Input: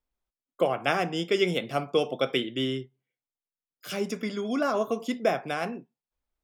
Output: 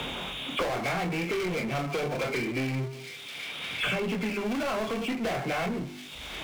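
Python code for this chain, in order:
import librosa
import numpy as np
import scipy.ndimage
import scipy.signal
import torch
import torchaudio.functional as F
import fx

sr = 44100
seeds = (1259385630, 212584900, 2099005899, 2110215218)

y = fx.freq_compress(x, sr, knee_hz=2100.0, ratio=4.0)
y = scipy.signal.sosfilt(scipy.signal.butter(4, 47.0, 'highpass', fs=sr, output='sos'), y)
y = fx.peak_eq(y, sr, hz=140.0, db=6.0, octaves=1.0)
y = fx.hum_notches(y, sr, base_hz=50, count=8)
y = np.clip(y, -10.0 ** (-26.0 / 20.0), 10.0 ** (-26.0 / 20.0))
y = fx.chorus_voices(y, sr, voices=2, hz=0.73, base_ms=25, depth_ms=3.6, mix_pct=40)
y = fx.power_curve(y, sr, exponent=0.5)
y = fx.echo_wet_highpass(y, sr, ms=356, feedback_pct=76, hz=3000.0, wet_db=-18.0)
y = fx.band_squash(y, sr, depth_pct=100)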